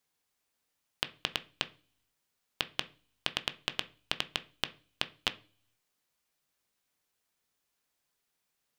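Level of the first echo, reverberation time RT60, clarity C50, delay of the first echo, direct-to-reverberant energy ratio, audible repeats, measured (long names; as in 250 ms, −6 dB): no echo audible, 0.40 s, 19.0 dB, no echo audible, 10.0 dB, no echo audible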